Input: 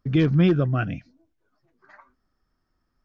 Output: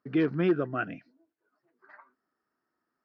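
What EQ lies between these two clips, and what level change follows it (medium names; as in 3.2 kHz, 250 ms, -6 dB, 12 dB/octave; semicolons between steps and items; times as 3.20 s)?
cabinet simulation 410–4500 Hz, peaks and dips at 550 Hz -6 dB, 780 Hz -5 dB, 1.1 kHz -4 dB, 2.3 kHz -4 dB, 3.4 kHz -9 dB; treble shelf 2.5 kHz -9 dB; +2.5 dB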